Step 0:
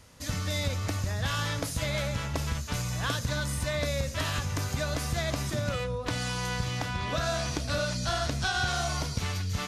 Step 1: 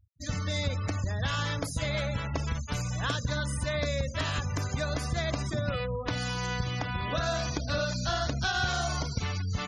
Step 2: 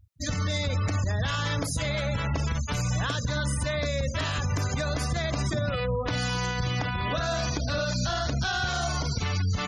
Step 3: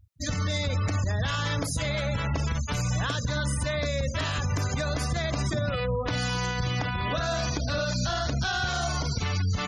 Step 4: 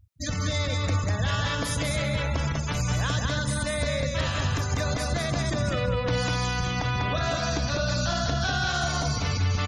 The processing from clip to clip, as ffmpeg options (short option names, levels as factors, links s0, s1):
-af "afftfilt=real='re*gte(hypot(re,im),0.0158)':imag='im*gte(hypot(re,im),0.0158)':win_size=1024:overlap=0.75"
-af "alimiter=level_in=1.41:limit=0.0631:level=0:latency=1:release=68,volume=0.708,volume=2.37"
-af anull
-af "aecho=1:1:197|394|591:0.708|0.127|0.0229"